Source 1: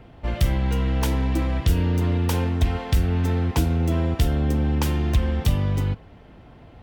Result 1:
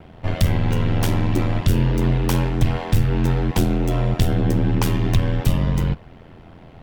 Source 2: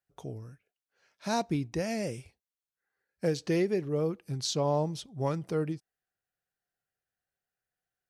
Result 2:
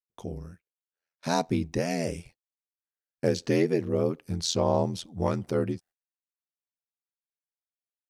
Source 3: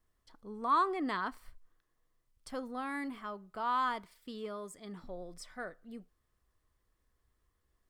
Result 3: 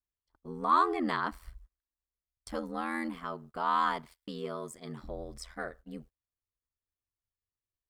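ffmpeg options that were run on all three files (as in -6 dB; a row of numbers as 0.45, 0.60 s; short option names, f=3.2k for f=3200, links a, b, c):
-af "acontrast=63,agate=range=-26dB:threshold=-48dB:ratio=16:detection=peak,aeval=exprs='val(0)*sin(2*PI*42*n/s)':c=same"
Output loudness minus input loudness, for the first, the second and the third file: +2.5, +3.5, +3.5 LU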